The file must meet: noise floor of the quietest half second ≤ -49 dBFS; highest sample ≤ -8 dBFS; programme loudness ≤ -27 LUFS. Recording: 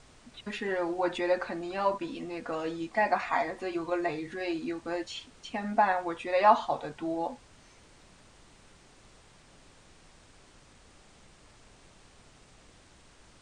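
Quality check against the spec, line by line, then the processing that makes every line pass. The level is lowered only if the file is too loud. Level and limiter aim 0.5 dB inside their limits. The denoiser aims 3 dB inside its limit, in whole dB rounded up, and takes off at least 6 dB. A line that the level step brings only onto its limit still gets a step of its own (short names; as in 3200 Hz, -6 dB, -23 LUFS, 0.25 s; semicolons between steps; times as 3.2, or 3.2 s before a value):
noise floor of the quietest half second -57 dBFS: OK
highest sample -9.0 dBFS: OK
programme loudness -30.5 LUFS: OK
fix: none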